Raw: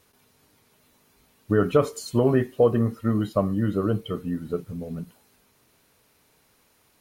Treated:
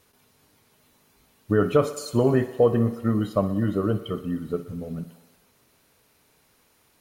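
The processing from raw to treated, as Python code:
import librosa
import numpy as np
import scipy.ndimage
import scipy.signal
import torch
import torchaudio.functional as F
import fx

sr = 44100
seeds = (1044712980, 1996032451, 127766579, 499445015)

y = fx.echo_thinned(x, sr, ms=61, feedback_pct=76, hz=170.0, wet_db=-16)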